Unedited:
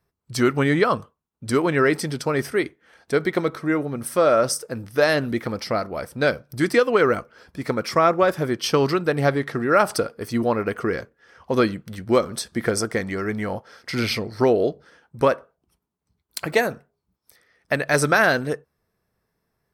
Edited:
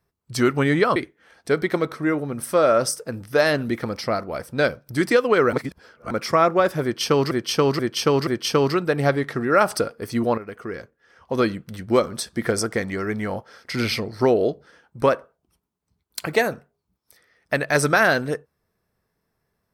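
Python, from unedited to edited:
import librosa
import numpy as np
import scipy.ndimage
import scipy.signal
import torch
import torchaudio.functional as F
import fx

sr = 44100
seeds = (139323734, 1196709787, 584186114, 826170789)

y = fx.edit(x, sr, fx.cut(start_s=0.96, length_s=1.63),
    fx.reverse_span(start_s=7.16, length_s=0.58),
    fx.repeat(start_s=8.46, length_s=0.48, count=4),
    fx.fade_in_from(start_s=10.57, length_s=1.3, floor_db=-13.0), tone=tone)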